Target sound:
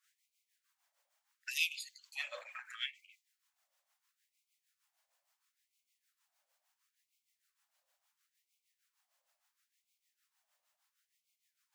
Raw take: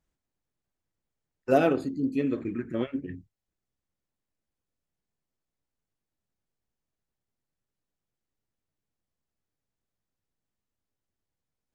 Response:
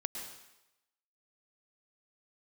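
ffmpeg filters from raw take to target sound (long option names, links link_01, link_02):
-filter_complex "[0:a]acrossover=split=630[link_01][link_02];[link_01]aeval=exprs='val(0)*(1-0.7/2+0.7/2*cos(2*PI*6.5*n/s))':channel_layout=same[link_03];[link_02]aeval=exprs='val(0)*(1-0.7/2-0.7/2*cos(2*PI*6.5*n/s))':channel_layout=same[link_04];[link_03][link_04]amix=inputs=2:normalize=0,acrossover=split=170|3000[link_05][link_06][link_07];[link_06]acompressor=threshold=-45dB:ratio=3[link_08];[link_05][link_08][link_07]amix=inputs=3:normalize=0,afftfilt=real='re*gte(b*sr/1024,510*pow(2100/510,0.5+0.5*sin(2*PI*0.73*pts/sr)))':imag='im*gte(b*sr/1024,510*pow(2100/510,0.5+0.5*sin(2*PI*0.73*pts/sr)))':win_size=1024:overlap=0.75,volume=14.5dB"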